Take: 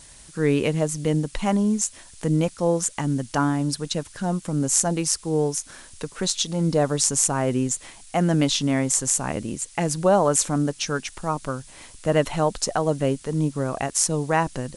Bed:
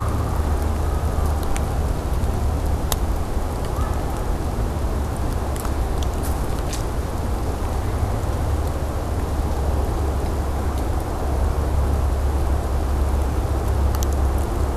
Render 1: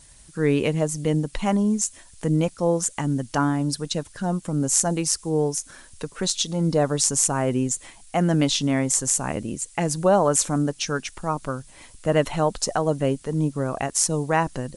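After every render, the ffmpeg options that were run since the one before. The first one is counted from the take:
-af "afftdn=nr=6:nf=-47"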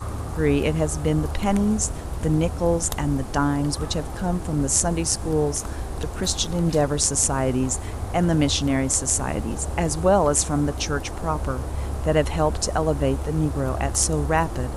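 -filter_complex "[1:a]volume=0.398[s0];[0:a][s0]amix=inputs=2:normalize=0"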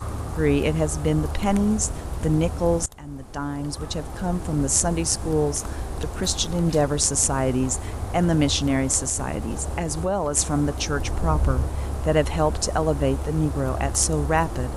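-filter_complex "[0:a]asettb=1/sr,asplit=3[s0][s1][s2];[s0]atrim=end=9.044[s3];[s1]atrim=start=9.04:end=10.37,asetpts=PTS-STARTPTS,afade=t=in:d=0.004:c=qsin,afade=t=out:st=1.326:d=0.004:c=qsin,acompressor=threshold=0.0794:ratio=2.5:attack=3.2:release=140:knee=1:detection=peak[s4];[s2]atrim=start=10.366[s5];[s3][s4]acrossfade=d=0.004:c1=hsin:c2=qsin[s6];[s6][s5]acrossfade=d=0.004:c1=qsin:c2=hsin,asettb=1/sr,asplit=3[s7][s8][s9];[s7]atrim=end=10.994[s10];[s8]atrim=start=10.99:end=11.67,asetpts=PTS-STARTPTS,afade=t=in:d=0.004:c=qsin,afade=t=out:st=0.676:d=0.004:c=qsin,lowshelf=f=170:g=8.5[s11];[s9]atrim=start=11.666[s12];[s10][s11]acrossfade=d=0.004:c1=hsin:c2=qsin[s13];[s13][s12]acrossfade=d=0.004:c1=qsin:c2=hsin,asplit=2[s14][s15];[s14]atrim=end=2.86,asetpts=PTS-STARTPTS,afade=t=out:st=2.856:d=0.004:c=hsin:silence=0.0891251[s16];[s15]atrim=start=2.86,asetpts=PTS-STARTPTS,afade=t=in:d=1.62:silence=0.0891251[s17];[s16][s17]concat=n=2:v=0:a=1"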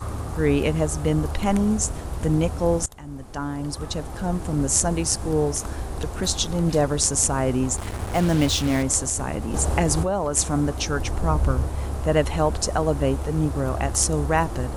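-filter_complex "[0:a]asettb=1/sr,asplit=3[s0][s1][s2];[s0]atrim=end=7.774[s3];[s1]atrim=start=7.77:end=8.83,asetpts=PTS-STARTPTS,afade=t=in:d=0.004:c=qsin,afade=t=out:st=1.056:d=0.004:c=qsin,acrusher=bits=4:mix=0:aa=0.5[s4];[s2]atrim=start=8.826[s5];[s3][s4]acrossfade=d=0.004:c1=hsin:c2=qsin[s6];[s6][s5]acrossfade=d=0.004:c1=qsin:c2=hsin,asplit=3[s7][s8][s9];[s7]atrim=end=9.542[s10];[s8]atrim=start=9.538:end=10.032,asetpts=PTS-STARTPTS,volume=2[s11];[s9]atrim=start=10.028[s12];[s10][s11]acrossfade=d=0.004:c1=hsin:c2=hsin[s13];[s13][s12]acrossfade=d=0.004:c1=hsin:c2=hsin"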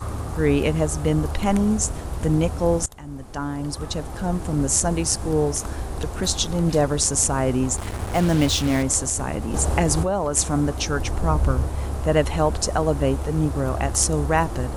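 -af "volume=1.12,alimiter=limit=0.708:level=0:latency=1"

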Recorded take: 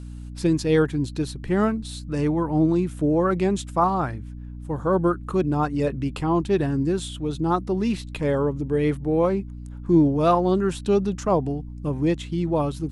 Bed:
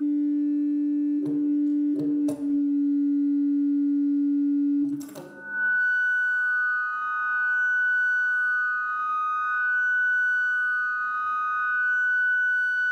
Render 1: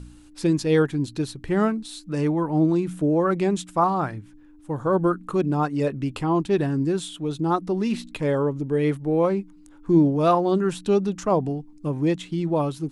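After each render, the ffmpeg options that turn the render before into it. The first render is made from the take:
-af "bandreject=f=60:t=h:w=4,bandreject=f=120:t=h:w=4,bandreject=f=180:t=h:w=4,bandreject=f=240:t=h:w=4"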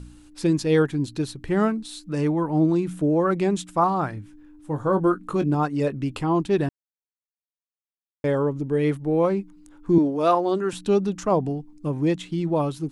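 -filter_complex "[0:a]asettb=1/sr,asplit=3[s0][s1][s2];[s0]atrim=end=4.154[s3];[s1]atrim=start=4.15:end=5.55,asetpts=PTS-STARTPTS,afade=t=in:d=0.004:c=qsin,afade=t=out:st=1.396:d=0.004:c=qsin,asplit=2[s4][s5];[s5]adelay=20,volume=0.335[s6];[s4][s6]amix=inputs=2:normalize=0,atrim=end_sample=61740[s7];[s2]atrim=start=5.546[s8];[s3][s7]acrossfade=d=0.004:c1=hsin:c2=qsin[s9];[s9][s8]acrossfade=d=0.004:c1=qsin:c2=hsin,asettb=1/sr,asplit=3[s10][s11][s12];[s10]atrim=end=9.984[s13];[s11]atrim=start=9.98:end=10.73,asetpts=PTS-STARTPTS,afade=t=in:d=0.004:c=qsin,afade=t=out:st=0.746:d=0.004:c=qsin,highpass=280[s14];[s12]atrim=start=10.726[s15];[s13][s14]acrossfade=d=0.004:c1=hsin:c2=qsin[s16];[s16][s15]acrossfade=d=0.004:c1=qsin:c2=hsin,asplit=3[s17][s18][s19];[s17]atrim=end=6.69,asetpts=PTS-STARTPTS,afade=t=out:st=6.686:d=0.004:c=hsin[s20];[s18]atrim=start=6.69:end=8.24,asetpts=PTS-STARTPTS,volume=0[s21];[s19]atrim=start=8.24,asetpts=PTS-STARTPTS,afade=t=in:d=0.004:c=hsin[s22];[s20][s21][s22]concat=n=3:v=0:a=1"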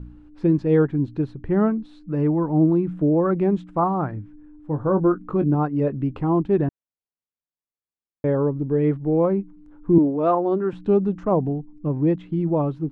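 -af "lowpass=1700,tiltshelf=f=660:g=3.5"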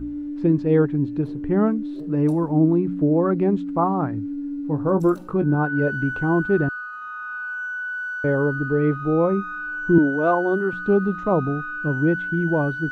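-filter_complex "[1:a]volume=0.501[s0];[0:a][s0]amix=inputs=2:normalize=0"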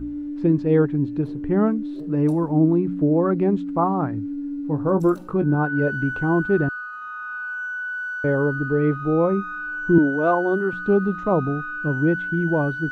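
-af anull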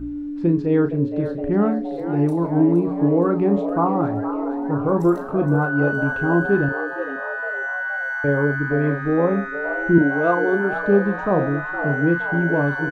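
-filter_complex "[0:a]asplit=2[s0][s1];[s1]adelay=35,volume=0.355[s2];[s0][s2]amix=inputs=2:normalize=0,asplit=2[s3][s4];[s4]asplit=7[s5][s6][s7][s8][s9][s10][s11];[s5]adelay=467,afreqshift=130,volume=0.282[s12];[s6]adelay=934,afreqshift=260,volume=0.17[s13];[s7]adelay=1401,afreqshift=390,volume=0.101[s14];[s8]adelay=1868,afreqshift=520,volume=0.061[s15];[s9]adelay=2335,afreqshift=650,volume=0.0367[s16];[s10]adelay=2802,afreqshift=780,volume=0.0219[s17];[s11]adelay=3269,afreqshift=910,volume=0.0132[s18];[s12][s13][s14][s15][s16][s17][s18]amix=inputs=7:normalize=0[s19];[s3][s19]amix=inputs=2:normalize=0"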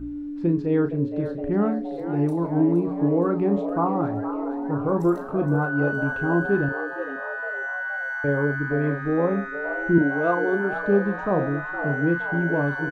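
-af "volume=0.668"

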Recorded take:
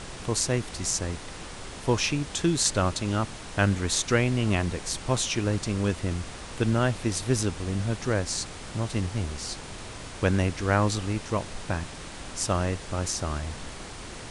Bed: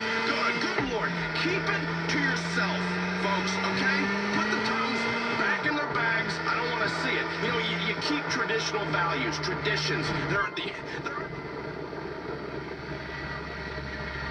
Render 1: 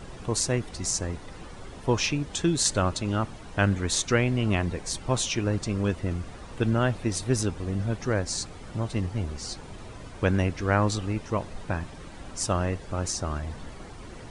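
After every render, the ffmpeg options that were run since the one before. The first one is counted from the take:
-af "afftdn=nr=11:nf=-41"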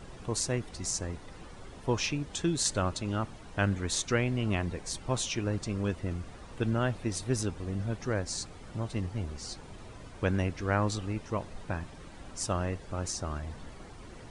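-af "volume=0.562"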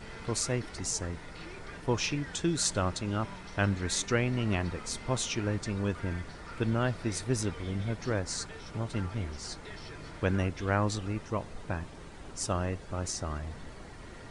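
-filter_complex "[1:a]volume=0.1[s0];[0:a][s0]amix=inputs=2:normalize=0"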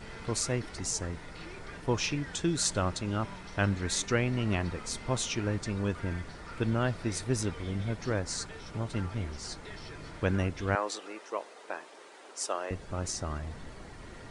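-filter_complex "[0:a]asettb=1/sr,asplit=3[s0][s1][s2];[s0]atrim=end=10.754[s3];[s1]atrim=start=10.75:end=12.71,asetpts=PTS-STARTPTS,afade=t=in:d=0.004:c=qsin,afade=t=out:st=1.956:d=0.004:c=qsin,highpass=f=380:w=0.5412,highpass=f=380:w=1.3066[s4];[s2]atrim=start=12.706[s5];[s3][s4]acrossfade=d=0.004:c1=hsin:c2=qsin[s6];[s6][s5]acrossfade=d=0.004:c1=qsin:c2=hsin"

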